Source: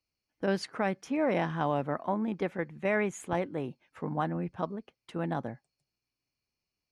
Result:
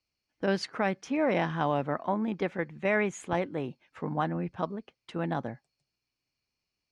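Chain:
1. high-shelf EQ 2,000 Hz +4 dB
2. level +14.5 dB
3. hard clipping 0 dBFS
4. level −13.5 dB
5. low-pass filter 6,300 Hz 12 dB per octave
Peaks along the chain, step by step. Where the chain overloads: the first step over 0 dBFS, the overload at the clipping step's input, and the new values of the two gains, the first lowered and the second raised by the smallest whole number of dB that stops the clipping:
−16.0, −1.5, −1.5, −15.0, −15.0 dBFS
no step passes full scale

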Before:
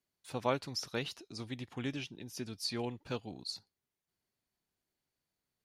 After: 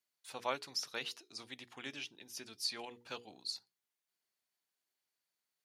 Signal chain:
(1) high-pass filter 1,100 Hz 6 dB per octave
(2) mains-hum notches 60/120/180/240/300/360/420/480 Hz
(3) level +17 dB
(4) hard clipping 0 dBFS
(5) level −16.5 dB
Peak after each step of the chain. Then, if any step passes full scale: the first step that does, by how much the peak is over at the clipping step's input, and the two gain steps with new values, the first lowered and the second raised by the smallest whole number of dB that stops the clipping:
−21.0, −21.5, −4.5, −4.5, −21.0 dBFS
no step passes full scale

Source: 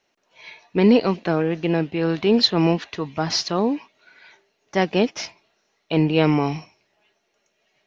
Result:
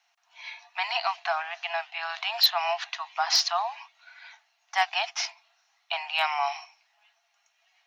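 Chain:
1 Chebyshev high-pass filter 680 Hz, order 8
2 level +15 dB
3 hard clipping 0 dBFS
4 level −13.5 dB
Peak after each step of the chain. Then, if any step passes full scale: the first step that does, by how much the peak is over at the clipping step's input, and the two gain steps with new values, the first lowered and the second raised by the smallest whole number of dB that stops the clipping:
−5.5, +9.5, 0.0, −13.5 dBFS
step 2, 9.5 dB
step 2 +5 dB, step 4 −3.5 dB

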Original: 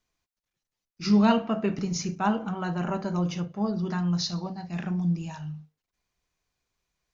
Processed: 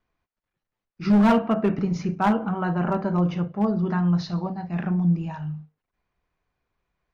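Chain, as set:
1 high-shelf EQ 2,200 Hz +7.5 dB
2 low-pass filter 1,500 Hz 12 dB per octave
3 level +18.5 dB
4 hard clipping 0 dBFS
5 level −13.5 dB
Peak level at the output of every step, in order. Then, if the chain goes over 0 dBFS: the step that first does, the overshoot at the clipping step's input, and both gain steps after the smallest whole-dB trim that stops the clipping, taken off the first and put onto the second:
−7.0, −8.5, +10.0, 0.0, −13.5 dBFS
step 3, 10.0 dB
step 3 +8.5 dB, step 5 −3.5 dB

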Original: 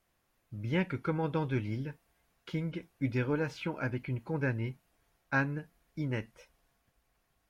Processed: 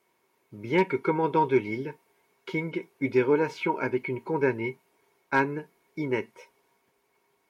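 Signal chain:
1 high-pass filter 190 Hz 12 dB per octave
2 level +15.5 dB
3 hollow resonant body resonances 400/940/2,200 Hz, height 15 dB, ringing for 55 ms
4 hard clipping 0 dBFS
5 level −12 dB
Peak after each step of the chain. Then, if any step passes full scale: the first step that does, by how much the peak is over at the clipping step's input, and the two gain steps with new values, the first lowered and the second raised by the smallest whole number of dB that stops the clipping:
−14.5, +1.0, +3.5, 0.0, −12.0 dBFS
step 2, 3.5 dB
step 2 +11.5 dB, step 5 −8 dB

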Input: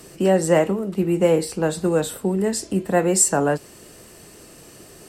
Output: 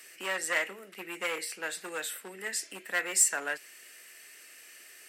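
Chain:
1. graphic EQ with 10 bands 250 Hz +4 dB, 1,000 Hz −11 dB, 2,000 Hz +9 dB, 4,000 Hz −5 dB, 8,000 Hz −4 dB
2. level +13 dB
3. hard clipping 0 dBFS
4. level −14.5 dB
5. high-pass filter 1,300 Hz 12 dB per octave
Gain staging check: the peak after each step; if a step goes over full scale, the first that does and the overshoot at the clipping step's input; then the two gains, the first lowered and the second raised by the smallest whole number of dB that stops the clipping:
−5.0, +8.0, 0.0, −14.5, −13.0 dBFS
step 2, 8.0 dB
step 2 +5 dB, step 4 −6.5 dB

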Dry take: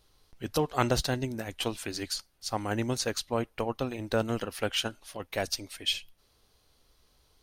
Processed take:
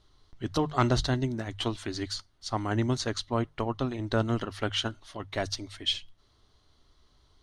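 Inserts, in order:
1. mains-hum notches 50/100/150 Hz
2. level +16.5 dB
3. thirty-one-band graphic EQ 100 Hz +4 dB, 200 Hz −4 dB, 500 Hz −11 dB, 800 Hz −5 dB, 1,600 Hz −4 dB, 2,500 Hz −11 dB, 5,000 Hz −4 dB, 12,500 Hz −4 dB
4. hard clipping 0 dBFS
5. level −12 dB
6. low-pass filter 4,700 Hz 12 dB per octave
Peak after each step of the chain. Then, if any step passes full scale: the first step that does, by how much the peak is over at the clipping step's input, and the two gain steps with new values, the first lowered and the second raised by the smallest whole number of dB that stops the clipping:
−10.0, +6.5, +4.5, 0.0, −12.0, −12.0 dBFS
step 2, 4.5 dB
step 2 +11.5 dB, step 5 −7 dB

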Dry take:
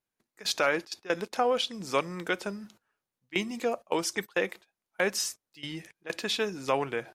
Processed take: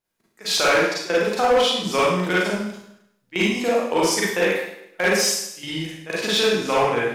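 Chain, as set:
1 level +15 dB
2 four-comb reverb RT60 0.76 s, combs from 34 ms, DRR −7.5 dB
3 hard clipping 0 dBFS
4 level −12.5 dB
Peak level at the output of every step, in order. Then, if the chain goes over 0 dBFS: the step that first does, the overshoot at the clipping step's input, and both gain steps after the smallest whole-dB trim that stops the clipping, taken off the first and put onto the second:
+3.5, +8.5, 0.0, −12.5 dBFS
step 1, 8.5 dB
step 1 +6 dB, step 4 −3.5 dB

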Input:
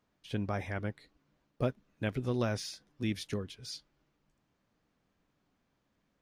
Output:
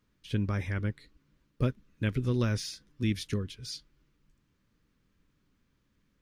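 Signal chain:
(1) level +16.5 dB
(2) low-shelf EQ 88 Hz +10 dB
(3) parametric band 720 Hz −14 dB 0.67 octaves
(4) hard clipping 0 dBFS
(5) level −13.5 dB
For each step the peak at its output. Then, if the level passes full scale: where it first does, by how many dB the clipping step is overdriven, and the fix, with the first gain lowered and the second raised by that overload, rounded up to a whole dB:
−2.5, −1.0, −2.0, −2.0, −15.5 dBFS
no step passes full scale

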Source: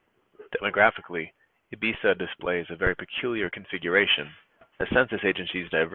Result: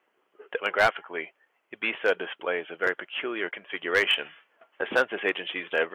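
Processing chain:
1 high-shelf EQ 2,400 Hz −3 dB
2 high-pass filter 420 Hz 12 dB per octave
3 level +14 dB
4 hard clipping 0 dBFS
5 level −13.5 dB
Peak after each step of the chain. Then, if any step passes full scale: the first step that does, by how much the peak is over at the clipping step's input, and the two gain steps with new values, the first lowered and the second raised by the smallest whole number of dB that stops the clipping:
−6.5, −6.5, +7.5, 0.0, −13.5 dBFS
step 3, 7.5 dB
step 3 +6 dB, step 5 −5.5 dB

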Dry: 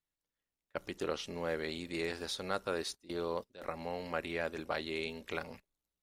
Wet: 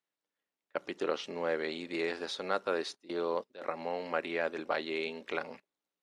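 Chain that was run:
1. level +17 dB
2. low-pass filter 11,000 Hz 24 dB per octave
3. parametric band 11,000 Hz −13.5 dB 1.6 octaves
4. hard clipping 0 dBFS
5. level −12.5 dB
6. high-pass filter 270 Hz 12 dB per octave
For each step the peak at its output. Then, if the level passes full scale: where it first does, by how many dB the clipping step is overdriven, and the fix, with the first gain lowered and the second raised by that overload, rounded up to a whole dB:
−2.0, −2.0, −2.5, −2.5, −15.0, −16.0 dBFS
no step passes full scale

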